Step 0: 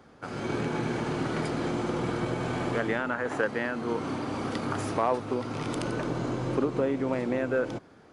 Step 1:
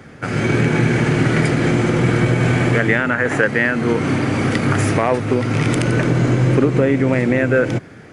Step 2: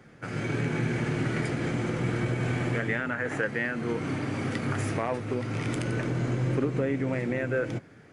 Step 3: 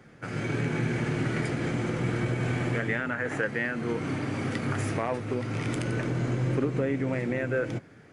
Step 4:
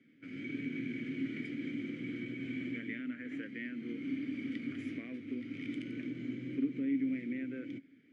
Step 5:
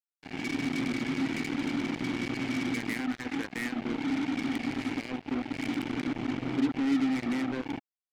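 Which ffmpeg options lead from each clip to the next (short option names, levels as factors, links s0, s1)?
-filter_complex "[0:a]equalizer=f=125:t=o:w=1:g=8,equalizer=f=1000:t=o:w=1:g=-7,equalizer=f=2000:t=o:w=1:g=9,equalizer=f=4000:t=o:w=1:g=-4,equalizer=f=8000:t=o:w=1:g=3,asplit=2[s0][s1];[s1]alimiter=limit=0.0891:level=0:latency=1:release=214,volume=0.891[s2];[s0][s2]amix=inputs=2:normalize=0,volume=2.37"
-af "flanger=delay=5.5:depth=4.7:regen=-71:speed=0.27:shape=triangular,volume=0.376"
-af anull
-filter_complex "[0:a]asplit=3[s0][s1][s2];[s0]bandpass=f=270:t=q:w=8,volume=1[s3];[s1]bandpass=f=2290:t=q:w=8,volume=0.501[s4];[s2]bandpass=f=3010:t=q:w=8,volume=0.355[s5];[s3][s4][s5]amix=inputs=3:normalize=0"
-filter_complex "[0:a]asplit=2[s0][s1];[s1]asoftclip=type=tanh:threshold=0.015,volume=0.596[s2];[s0][s2]amix=inputs=2:normalize=0,acrusher=bits=5:mix=0:aa=0.5,volume=1.58"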